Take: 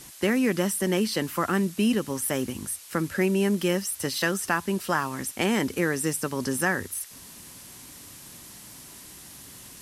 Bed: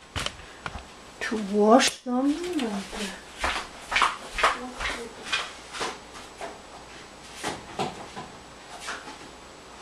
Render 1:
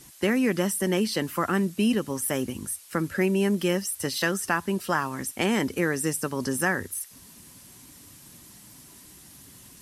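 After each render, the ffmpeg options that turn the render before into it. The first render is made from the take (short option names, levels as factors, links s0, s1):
-af "afftdn=nr=6:nf=-46"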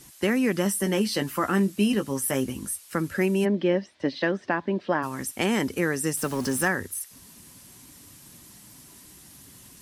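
-filter_complex "[0:a]asettb=1/sr,asplit=3[s0][s1][s2];[s0]atrim=end=0.644[s3];[s1]atrim=start=0.64:end=2.79,asetpts=PTS-STARTPTS,afade=t=in:d=0.004:c=qsin,afade=t=out:st=2.146:d=0.004:c=qsin,asplit=2[s4][s5];[s5]adelay=15,volume=0.398[s6];[s4][s6]amix=inputs=2:normalize=0,atrim=end_sample=94815[s7];[s2]atrim=start=2.786[s8];[s3][s7]acrossfade=d=0.004:c1=hsin:c2=qsin[s9];[s9][s8]acrossfade=d=0.004:c1=qsin:c2=hsin,asplit=3[s10][s11][s12];[s10]afade=t=out:st=3.44:d=0.02[s13];[s11]highpass=150,equalizer=f=290:t=q:w=4:g=8,equalizer=f=590:t=q:w=4:g=7,equalizer=f=1300:t=q:w=4:g=-8,equalizer=f=2800:t=q:w=4:g=-6,lowpass=f=3600:w=0.5412,lowpass=f=3600:w=1.3066,afade=t=in:st=3.44:d=0.02,afade=t=out:st=5.02:d=0.02[s14];[s12]afade=t=in:st=5.02:d=0.02[s15];[s13][s14][s15]amix=inputs=3:normalize=0,asettb=1/sr,asplit=3[s16][s17][s18];[s16]atrim=end=6.174[s19];[s17]atrim=start=6.17:end=6.68,asetpts=PTS-STARTPTS,afade=t=in:d=0.004:c=qsin,afade=t=out:st=0.506:d=0.004:c=qsin,aeval=exprs='val(0)+0.5*0.0188*sgn(val(0))':c=same[s20];[s18]atrim=start=6.676[s21];[s19][s20]acrossfade=d=0.004:c1=hsin:c2=qsin[s22];[s22][s21]acrossfade=d=0.004:c1=qsin:c2=hsin"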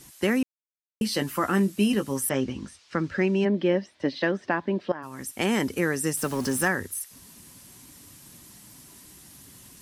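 -filter_complex "[0:a]asettb=1/sr,asplit=3[s0][s1][s2];[s0]atrim=end=2.294[s3];[s1]atrim=start=2.29:end=3.55,asetpts=PTS-STARTPTS,afade=t=in:d=0.004:c=qsin,afade=t=out:st=1.256:d=0.004:c=qsin,lowpass=f=5500:w=0.5412,lowpass=f=5500:w=1.3066[s4];[s2]atrim=start=3.546[s5];[s3][s4]acrossfade=d=0.004:c1=hsin:c2=qsin[s6];[s6][s5]acrossfade=d=0.004:c1=qsin:c2=hsin,asplit=4[s7][s8][s9][s10];[s7]atrim=end=0.43,asetpts=PTS-STARTPTS,afade=t=out:st=0.426:d=0.004:c=hsin[s11];[s8]atrim=start=0.43:end=1.01,asetpts=PTS-STARTPTS,volume=0[s12];[s9]atrim=start=1.01:end=4.92,asetpts=PTS-STARTPTS,afade=t=in:d=0.004:c=hsin,afade=t=out:st=3.906:d=0.004:c=hsin:silence=0.16788[s13];[s10]atrim=start=4.92,asetpts=PTS-STARTPTS,afade=t=in:d=0.57:silence=0.16788[s14];[s11][s12][s13][s14]concat=n=4:v=0:a=1"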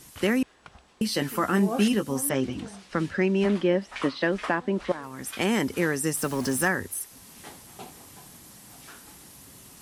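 -filter_complex "[1:a]volume=0.2[s0];[0:a][s0]amix=inputs=2:normalize=0"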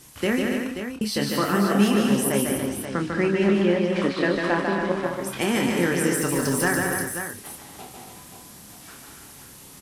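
-filter_complex "[0:a]asplit=2[s0][s1];[s1]adelay=29,volume=0.447[s2];[s0][s2]amix=inputs=2:normalize=0,asplit=2[s3][s4];[s4]aecho=0:1:148|218|285|372|532:0.631|0.398|0.447|0.2|0.376[s5];[s3][s5]amix=inputs=2:normalize=0"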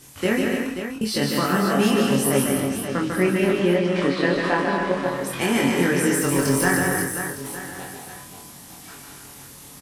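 -filter_complex "[0:a]asplit=2[s0][s1];[s1]adelay=22,volume=0.794[s2];[s0][s2]amix=inputs=2:normalize=0,aecho=1:1:911:0.188"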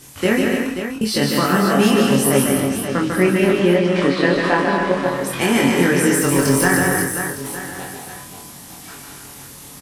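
-af "volume=1.68,alimiter=limit=0.794:level=0:latency=1"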